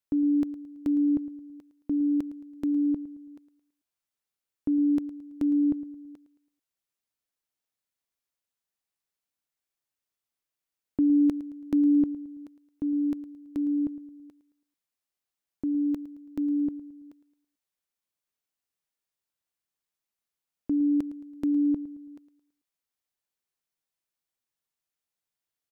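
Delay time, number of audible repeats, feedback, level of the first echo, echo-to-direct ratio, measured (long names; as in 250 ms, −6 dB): 110 ms, 3, 41%, −16.0 dB, −15.0 dB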